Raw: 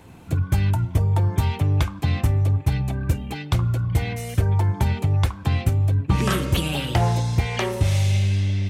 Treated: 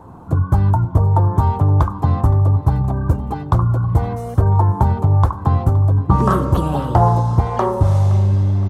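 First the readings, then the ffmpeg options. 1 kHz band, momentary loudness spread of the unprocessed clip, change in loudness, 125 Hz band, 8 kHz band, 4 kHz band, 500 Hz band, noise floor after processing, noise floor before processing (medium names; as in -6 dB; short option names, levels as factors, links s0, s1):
+11.0 dB, 5 LU, +6.0 dB, +5.5 dB, no reading, under -10 dB, +7.0 dB, -30 dBFS, -37 dBFS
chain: -af "highshelf=f=1600:t=q:w=3:g=-13.5,aecho=1:1:518|1036|1554|2072:0.126|0.0579|0.0266|0.0123,volume=1.88"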